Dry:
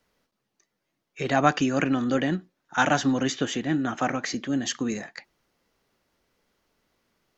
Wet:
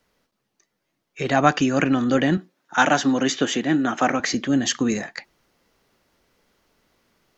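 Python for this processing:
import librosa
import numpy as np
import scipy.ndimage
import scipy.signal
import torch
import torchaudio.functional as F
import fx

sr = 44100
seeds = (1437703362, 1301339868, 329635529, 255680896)

p1 = fx.highpass(x, sr, hz=180.0, slope=12, at=(2.37, 4.2))
p2 = fx.rider(p1, sr, range_db=10, speed_s=0.5)
p3 = p1 + F.gain(torch.from_numpy(p2), 1.0).numpy()
y = F.gain(torch.from_numpy(p3), -1.5).numpy()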